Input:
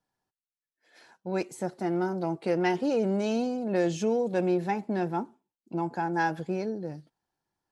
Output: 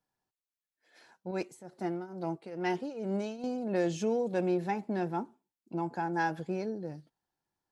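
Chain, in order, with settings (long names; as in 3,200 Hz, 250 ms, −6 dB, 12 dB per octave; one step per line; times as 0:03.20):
0:01.31–0:03.44: shaped tremolo triangle 2.3 Hz, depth 85%
level −3.5 dB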